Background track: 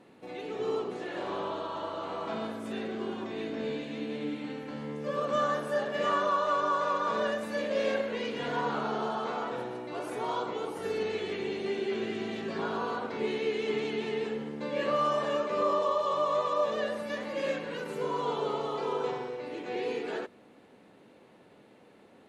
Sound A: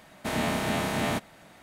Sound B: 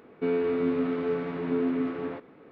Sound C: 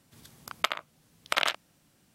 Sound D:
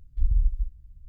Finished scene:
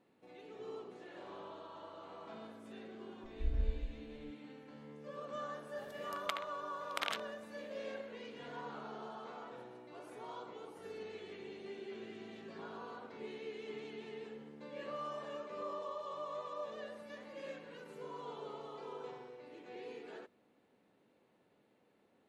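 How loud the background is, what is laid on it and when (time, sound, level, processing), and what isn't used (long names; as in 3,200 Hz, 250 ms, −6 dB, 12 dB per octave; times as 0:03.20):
background track −15 dB
0:03.23: mix in D −1.5 dB + tuned comb filter 64 Hz, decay 0.83 s, mix 80%
0:05.65: mix in C −12 dB
not used: A, B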